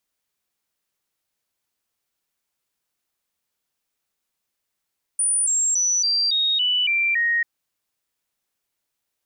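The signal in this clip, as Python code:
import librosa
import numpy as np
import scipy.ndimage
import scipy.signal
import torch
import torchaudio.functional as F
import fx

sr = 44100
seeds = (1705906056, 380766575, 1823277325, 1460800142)

y = fx.stepped_sweep(sr, from_hz=9430.0, direction='down', per_octave=3, tones=8, dwell_s=0.28, gap_s=0.0, level_db=-17.5)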